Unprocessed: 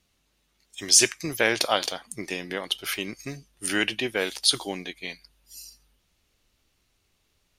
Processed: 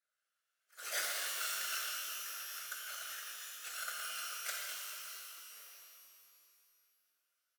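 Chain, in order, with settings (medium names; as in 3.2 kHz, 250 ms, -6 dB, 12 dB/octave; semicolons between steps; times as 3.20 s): bit-reversed sample order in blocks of 256 samples; careless resampling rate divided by 2×, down none, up zero stuff; ever faster or slower copies 104 ms, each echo +4 st, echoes 3, each echo -6 dB; two resonant band-passes 920 Hz, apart 1.3 oct; differentiator; frequency-shifting echo 222 ms, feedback 62%, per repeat -38 Hz, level -12 dB; whisper effect; pitch-shifted reverb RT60 1.9 s, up +12 st, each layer -2 dB, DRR -2 dB; trim +4 dB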